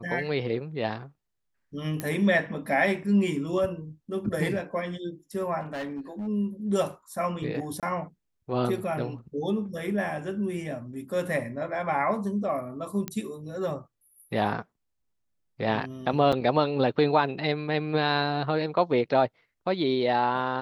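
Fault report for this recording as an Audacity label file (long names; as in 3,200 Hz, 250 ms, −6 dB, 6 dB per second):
2.000000	2.000000	click −15 dBFS
5.600000	6.280000	clipping −30 dBFS
7.800000	7.830000	drop-out 27 ms
13.080000	13.080000	click −16 dBFS
16.320000	16.330000	drop-out 6 ms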